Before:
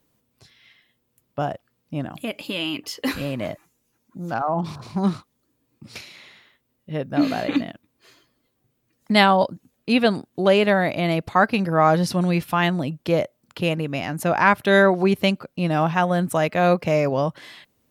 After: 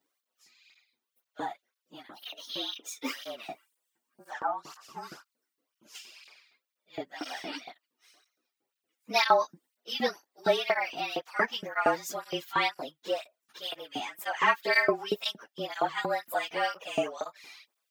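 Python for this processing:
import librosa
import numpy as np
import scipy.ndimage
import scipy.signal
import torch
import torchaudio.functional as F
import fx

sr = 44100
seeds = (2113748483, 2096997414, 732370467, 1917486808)

y = fx.partial_stretch(x, sr, pct=108)
y = fx.filter_lfo_highpass(y, sr, shape='saw_up', hz=4.3, low_hz=300.0, high_hz=2800.0, q=0.75)
y = fx.flanger_cancel(y, sr, hz=2.0, depth_ms=2.0)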